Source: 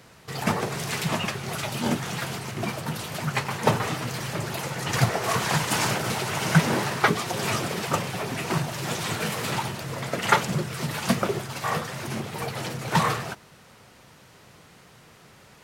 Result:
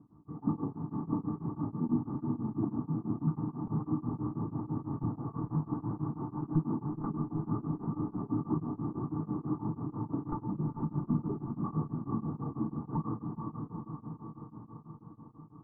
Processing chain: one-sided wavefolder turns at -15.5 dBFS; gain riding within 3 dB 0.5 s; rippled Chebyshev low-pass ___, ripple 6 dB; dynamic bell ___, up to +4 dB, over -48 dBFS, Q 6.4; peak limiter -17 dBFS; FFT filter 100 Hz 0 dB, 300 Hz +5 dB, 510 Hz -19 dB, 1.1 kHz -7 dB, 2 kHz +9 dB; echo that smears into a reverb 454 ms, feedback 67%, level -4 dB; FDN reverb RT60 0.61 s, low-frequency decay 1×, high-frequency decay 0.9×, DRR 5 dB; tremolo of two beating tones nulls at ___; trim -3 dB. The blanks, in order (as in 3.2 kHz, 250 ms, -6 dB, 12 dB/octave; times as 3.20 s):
1.2 kHz, 460 Hz, 6.1 Hz